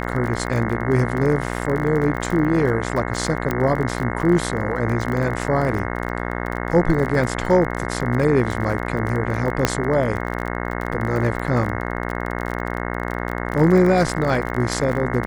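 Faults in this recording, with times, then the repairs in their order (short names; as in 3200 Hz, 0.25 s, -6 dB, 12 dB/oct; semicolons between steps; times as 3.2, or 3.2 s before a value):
buzz 60 Hz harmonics 36 -26 dBFS
crackle 34/s -25 dBFS
3.51 pop -9 dBFS
9.65 pop -1 dBFS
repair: de-click; de-hum 60 Hz, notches 36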